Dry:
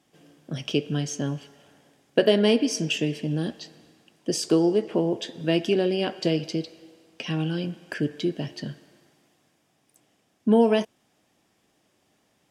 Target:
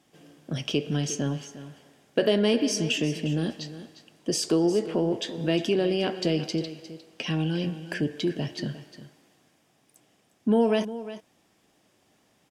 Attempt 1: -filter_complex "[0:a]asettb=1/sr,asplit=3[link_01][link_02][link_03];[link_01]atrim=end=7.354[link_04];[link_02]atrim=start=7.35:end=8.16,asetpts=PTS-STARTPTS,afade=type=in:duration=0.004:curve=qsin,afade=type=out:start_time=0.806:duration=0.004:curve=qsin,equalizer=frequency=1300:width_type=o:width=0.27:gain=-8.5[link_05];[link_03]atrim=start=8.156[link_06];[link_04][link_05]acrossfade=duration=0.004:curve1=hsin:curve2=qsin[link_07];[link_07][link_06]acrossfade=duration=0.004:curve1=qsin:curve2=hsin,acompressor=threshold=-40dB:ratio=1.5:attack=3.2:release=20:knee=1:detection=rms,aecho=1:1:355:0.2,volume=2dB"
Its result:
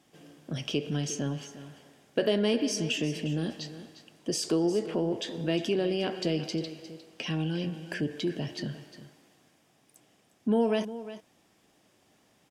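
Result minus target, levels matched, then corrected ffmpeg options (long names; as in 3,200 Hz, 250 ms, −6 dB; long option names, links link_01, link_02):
downward compressor: peak gain reduction +3.5 dB
-filter_complex "[0:a]asettb=1/sr,asplit=3[link_01][link_02][link_03];[link_01]atrim=end=7.354[link_04];[link_02]atrim=start=7.35:end=8.16,asetpts=PTS-STARTPTS,afade=type=in:duration=0.004:curve=qsin,afade=type=out:start_time=0.806:duration=0.004:curve=qsin,equalizer=frequency=1300:width_type=o:width=0.27:gain=-8.5[link_05];[link_03]atrim=start=8.156[link_06];[link_04][link_05]acrossfade=duration=0.004:curve1=hsin:curve2=qsin[link_07];[link_07][link_06]acrossfade=duration=0.004:curve1=qsin:curve2=hsin,acompressor=threshold=-29dB:ratio=1.5:attack=3.2:release=20:knee=1:detection=rms,aecho=1:1:355:0.2,volume=2dB"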